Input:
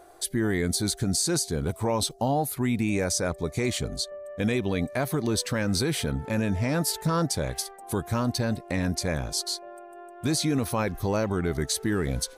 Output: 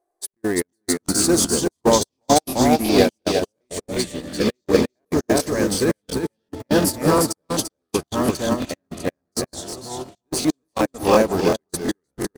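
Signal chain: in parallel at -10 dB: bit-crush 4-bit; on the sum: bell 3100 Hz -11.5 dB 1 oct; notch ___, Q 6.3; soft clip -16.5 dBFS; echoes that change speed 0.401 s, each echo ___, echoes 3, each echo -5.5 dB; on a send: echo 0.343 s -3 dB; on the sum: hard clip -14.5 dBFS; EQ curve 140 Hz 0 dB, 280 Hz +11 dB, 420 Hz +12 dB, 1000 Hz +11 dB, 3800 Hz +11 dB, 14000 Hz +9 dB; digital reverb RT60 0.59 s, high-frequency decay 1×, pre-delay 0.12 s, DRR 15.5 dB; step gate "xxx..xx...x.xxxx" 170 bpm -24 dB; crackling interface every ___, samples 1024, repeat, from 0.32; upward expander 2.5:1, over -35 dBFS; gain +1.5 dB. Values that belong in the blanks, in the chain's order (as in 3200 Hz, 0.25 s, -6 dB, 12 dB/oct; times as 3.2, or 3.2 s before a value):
1400 Hz, -5 st, 0.36 s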